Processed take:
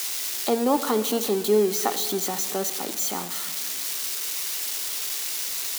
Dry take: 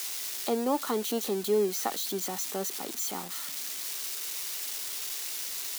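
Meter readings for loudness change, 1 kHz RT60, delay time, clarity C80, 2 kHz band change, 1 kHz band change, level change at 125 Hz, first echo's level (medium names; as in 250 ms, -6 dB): +6.5 dB, 1.8 s, no echo, 13.5 dB, +6.5 dB, +6.5 dB, +6.0 dB, no echo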